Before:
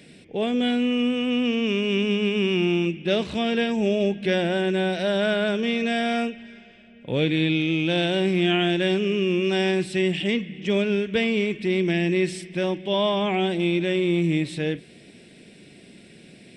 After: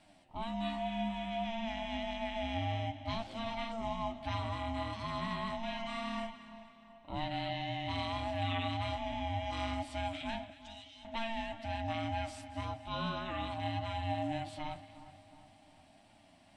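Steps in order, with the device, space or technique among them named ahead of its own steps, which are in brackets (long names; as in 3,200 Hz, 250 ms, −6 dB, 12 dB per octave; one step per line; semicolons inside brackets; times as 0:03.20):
alien voice (ring modulation 450 Hz; flanger 1.8 Hz, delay 9.1 ms, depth 2.6 ms, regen +43%)
0:10.50–0:11.05: inverse Chebyshev high-pass filter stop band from 550 Hz, stop band 80 dB
echo with a time of its own for lows and highs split 1,600 Hz, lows 360 ms, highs 231 ms, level −15 dB
level −8 dB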